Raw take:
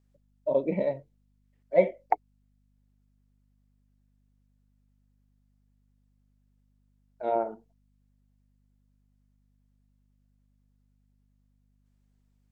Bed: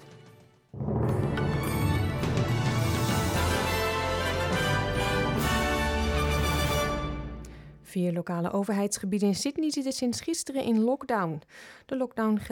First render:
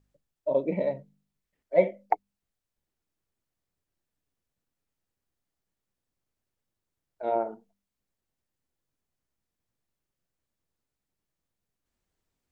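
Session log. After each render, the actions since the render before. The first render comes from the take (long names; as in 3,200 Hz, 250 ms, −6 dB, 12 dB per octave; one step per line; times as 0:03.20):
hum removal 50 Hz, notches 5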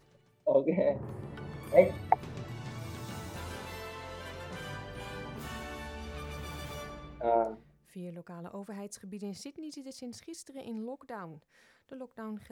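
mix in bed −15 dB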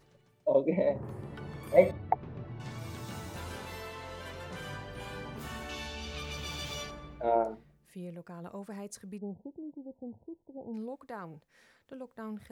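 0:01.91–0:02.60: head-to-tape spacing loss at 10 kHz 39 dB
0:05.69–0:06.91: flat-topped bell 4,100 Hz +9.5 dB
0:09.18–0:10.74: linear-phase brick-wall low-pass 1,000 Hz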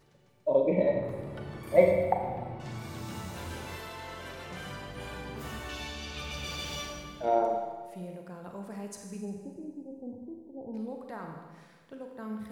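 four-comb reverb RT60 1.5 s, combs from 33 ms, DRR 2.5 dB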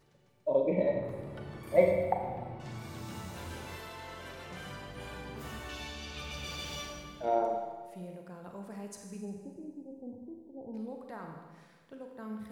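level −3 dB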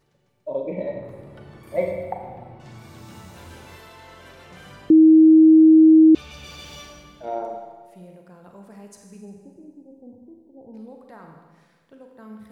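0:04.90–0:06.15: beep over 317 Hz −7.5 dBFS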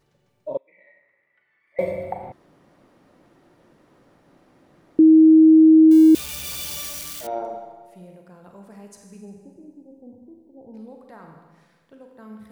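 0:00.57–0:01.79: resonant band-pass 2,000 Hz, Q 12
0:02.32–0:04.99: fill with room tone
0:05.91–0:07.27: spike at every zero crossing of −23.5 dBFS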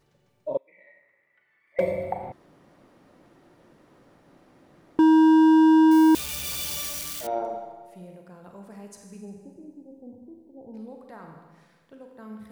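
gain into a clipping stage and back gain 14.5 dB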